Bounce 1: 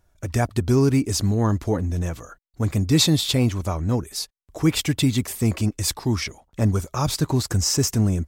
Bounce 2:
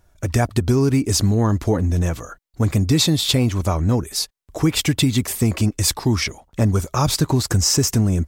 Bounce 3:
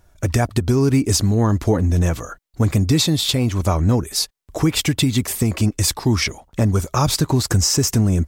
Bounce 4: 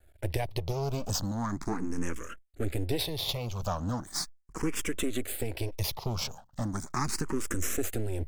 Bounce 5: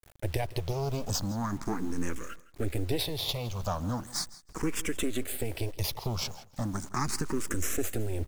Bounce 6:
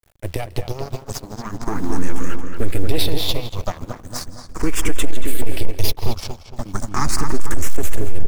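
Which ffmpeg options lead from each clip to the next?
-af "acompressor=threshold=-19dB:ratio=6,volume=6dB"
-af "alimiter=limit=-10.5dB:level=0:latency=1:release=467,volume=3dB"
-filter_complex "[0:a]asplit=2[a][b];[b]acompressor=threshold=-24dB:ratio=6,volume=-1dB[c];[a][c]amix=inputs=2:normalize=0,aeval=exprs='max(val(0),0)':c=same,asplit=2[d][e];[e]afreqshift=0.38[f];[d][f]amix=inputs=2:normalize=1,volume=-8.5dB"
-af "acrusher=bits=8:mix=0:aa=0.000001,aecho=1:1:163|326:0.112|0.0224"
-filter_complex "[0:a]asplit=2[a][b];[b]adelay=227,lowpass=f=2.8k:p=1,volume=-5dB,asplit=2[c][d];[d]adelay=227,lowpass=f=2.8k:p=1,volume=0.54,asplit=2[e][f];[f]adelay=227,lowpass=f=2.8k:p=1,volume=0.54,asplit=2[g][h];[h]adelay=227,lowpass=f=2.8k:p=1,volume=0.54,asplit=2[i][j];[j]adelay=227,lowpass=f=2.8k:p=1,volume=0.54,asplit=2[k][l];[l]adelay=227,lowpass=f=2.8k:p=1,volume=0.54,asplit=2[m][n];[n]adelay=227,lowpass=f=2.8k:p=1,volume=0.54[o];[a][c][e][g][i][k][m][o]amix=inputs=8:normalize=0,asubboost=boost=5:cutoff=55,aeval=exprs='0.531*(cos(1*acos(clip(val(0)/0.531,-1,1)))-cos(1*PI/2))+0.266*(cos(6*acos(clip(val(0)/0.531,-1,1)))-cos(6*PI/2))':c=same,volume=-2.5dB"

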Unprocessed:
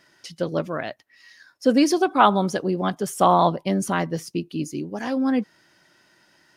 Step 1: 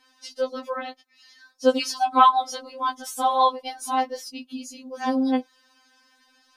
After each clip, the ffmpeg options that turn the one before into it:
-filter_complex "[0:a]equalizer=f=1k:t=o:w=1:g=5,equalizer=f=2k:t=o:w=1:g=-4,equalizer=f=4k:t=o:w=1:g=6,acrossover=split=510[a][b];[a]acompressor=threshold=-31dB:ratio=6[c];[c][b]amix=inputs=2:normalize=0,afftfilt=real='re*3.46*eq(mod(b,12),0)':imag='im*3.46*eq(mod(b,12),0)':win_size=2048:overlap=0.75"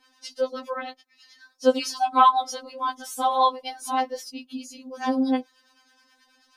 -filter_complex "[0:a]acrossover=split=850[a][b];[a]aeval=exprs='val(0)*(1-0.5/2+0.5/2*cos(2*PI*9.4*n/s))':c=same[c];[b]aeval=exprs='val(0)*(1-0.5/2-0.5/2*cos(2*PI*9.4*n/s))':c=same[d];[c][d]amix=inputs=2:normalize=0,volume=1.5dB"

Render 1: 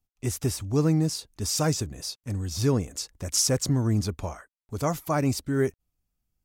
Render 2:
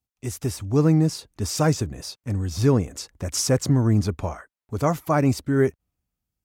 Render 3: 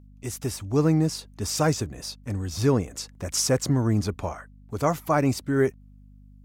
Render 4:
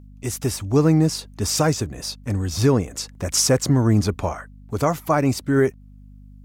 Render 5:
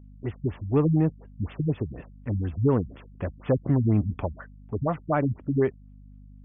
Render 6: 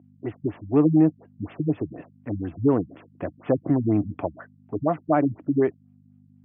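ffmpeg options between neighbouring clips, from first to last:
-filter_complex "[0:a]highpass=49,acrossover=split=2700[a][b];[a]dynaudnorm=f=130:g=9:m=7dB[c];[c][b]amix=inputs=2:normalize=0,volume=-2dB"
-af "aeval=exprs='val(0)+0.00631*(sin(2*PI*50*n/s)+sin(2*PI*2*50*n/s)/2+sin(2*PI*3*50*n/s)/3+sin(2*PI*4*50*n/s)/4+sin(2*PI*5*50*n/s)/5)':c=same,lowshelf=f=280:g=-5"
-af "alimiter=limit=-13.5dB:level=0:latency=1:release=460,volume=6dB"
-filter_complex "[0:a]asplit=2[a][b];[b]asoftclip=type=hard:threshold=-17.5dB,volume=-10.5dB[c];[a][c]amix=inputs=2:normalize=0,afftfilt=real='re*lt(b*sr/1024,210*pow(3600/210,0.5+0.5*sin(2*PI*4.1*pts/sr)))':imag='im*lt(b*sr/1024,210*pow(3600/210,0.5+0.5*sin(2*PI*4.1*pts/sr)))':win_size=1024:overlap=0.75,volume=-6dB"
-af "highpass=f=110:w=0.5412,highpass=f=110:w=1.3066,equalizer=f=130:t=q:w=4:g=-4,equalizer=f=210:t=q:w=4:g=-3,equalizer=f=310:t=q:w=4:g=9,equalizer=f=690:t=q:w=4:g=7,lowpass=f=3k:w=0.5412,lowpass=f=3k:w=1.3066"

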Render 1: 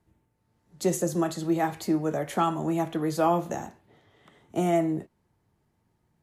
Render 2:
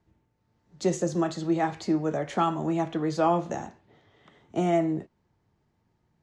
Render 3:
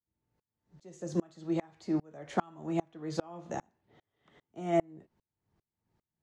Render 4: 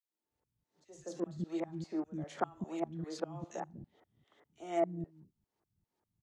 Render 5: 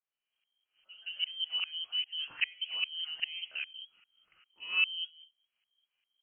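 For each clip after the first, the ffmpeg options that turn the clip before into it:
-af "lowpass=f=6.7k:w=0.5412,lowpass=f=6.7k:w=1.3066"
-af "aeval=exprs='val(0)*pow(10,-33*if(lt(mod(-2.5*n/s,1),2*abs(-2.5)/1000),1-mod(-2.5*n/s,1)/(2*abs(-2.5)/1000),(mod(-2.5*n/s,1)-2*abs(-2.5)/1000)/(1-2*abs(-2.5)/1000))/20)':c=same"
-filter_complex "[0:a]acrossover=split=260|2000[a][b][c];[b]adelay=40[d];[a]adelay=240[e];[e][d][c]amix=inputs=3:normalize=0,volume=-2.5dB"
-af "lowpass=f=2.8k:t=q:w=0.5098,lowpass=f=2.8k:t=q:w=0.6013,lowpass=f=2.8k:t=q:w=0.9,lowpass=f=2.8k:t=q:w=2.563,afreqshift=-3300,volume=2.5dB"

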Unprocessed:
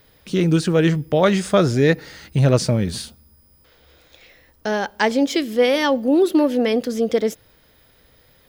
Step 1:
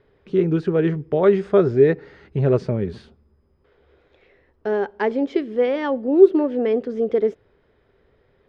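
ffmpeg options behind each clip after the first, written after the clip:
-af "lowpass=1.9k,equalizer=f=400:w=5.9:g=14.5,volume=-5dB"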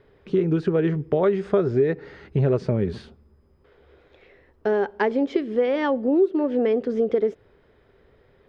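-af "acompressor=threshold=-21dB:ratio=4,volume=3dB"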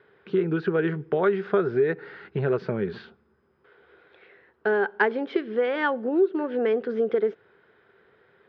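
-af "highpass=200,equalizer=f=270:t=q:w=4:g=-8,equalizer=f=580:t=q:w=4:g=-6,equalizer=f=1.5k:t=q:w=4:g=9,lowpass=f=4.2k:w=0.5412,lowpass=f=4.2k:w=1.3066"

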